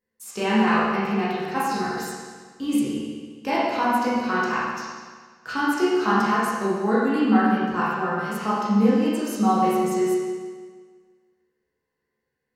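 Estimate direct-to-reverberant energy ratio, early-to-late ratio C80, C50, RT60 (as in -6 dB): -10.0 dB, 0.0 dB, -3.0 dB, 1.6 s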